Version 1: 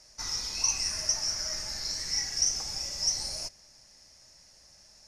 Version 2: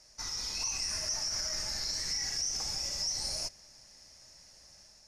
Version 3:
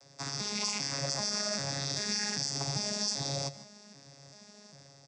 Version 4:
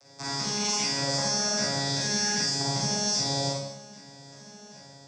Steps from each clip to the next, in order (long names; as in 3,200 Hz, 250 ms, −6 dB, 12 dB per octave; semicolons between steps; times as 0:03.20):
brickwall limiter −25.5 dBFS, peak gain reduction 11 dB; automatic gain control gain up to 3.5 dB; level −3 dB
vocoder with an arpeggio as carrier bare fifth, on C#3, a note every 393 ms; single-tap delay 150 ms −16.5 dB; level +2.5 dB
four-comb reverb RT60 0.78 s, combs from 32 ms, DRR −6 dB